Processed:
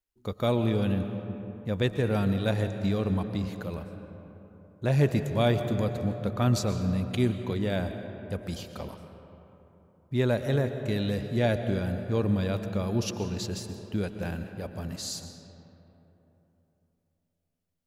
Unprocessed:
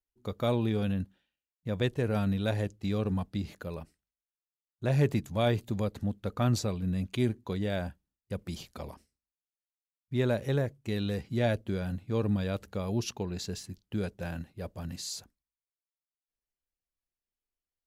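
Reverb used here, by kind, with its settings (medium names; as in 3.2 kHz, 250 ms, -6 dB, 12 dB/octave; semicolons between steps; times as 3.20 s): algorithmic reverb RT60 3.5 s, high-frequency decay 0.45×, pre-delay 85 ms, DRR 8 dB; trim +2.5 dB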